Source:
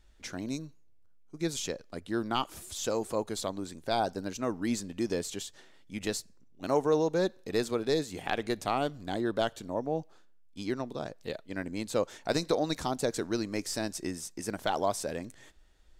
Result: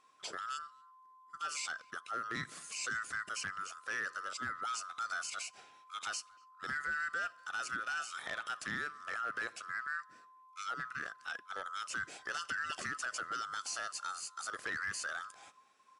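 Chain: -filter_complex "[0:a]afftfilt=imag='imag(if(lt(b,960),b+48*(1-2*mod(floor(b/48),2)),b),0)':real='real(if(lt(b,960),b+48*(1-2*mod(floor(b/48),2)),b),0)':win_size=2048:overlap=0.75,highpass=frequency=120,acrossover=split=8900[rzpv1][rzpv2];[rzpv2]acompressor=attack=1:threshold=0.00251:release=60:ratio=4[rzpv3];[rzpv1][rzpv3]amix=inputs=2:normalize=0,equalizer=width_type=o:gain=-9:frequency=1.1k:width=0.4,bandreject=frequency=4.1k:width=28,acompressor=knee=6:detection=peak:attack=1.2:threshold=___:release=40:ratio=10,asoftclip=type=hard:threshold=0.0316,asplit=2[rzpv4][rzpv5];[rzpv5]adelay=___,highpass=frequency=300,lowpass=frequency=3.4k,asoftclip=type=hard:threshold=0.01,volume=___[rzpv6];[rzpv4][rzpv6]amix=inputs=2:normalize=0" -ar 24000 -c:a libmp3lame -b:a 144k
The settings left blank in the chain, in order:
0.0251, 240, 0.0794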